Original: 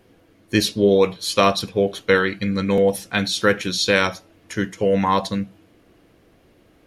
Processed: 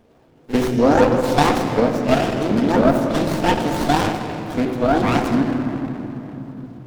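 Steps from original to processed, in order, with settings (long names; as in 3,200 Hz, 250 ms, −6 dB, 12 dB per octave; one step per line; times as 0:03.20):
pitch shifter swept by a sawtooth +11 semitones, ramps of 251 ms
backwards echo 44 ms −16 dB
on a send at −1.5 dB: convolution reverb RT60 3.5 s, pre-delay 3 ms
on the sum: windowed peak hold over 17 samples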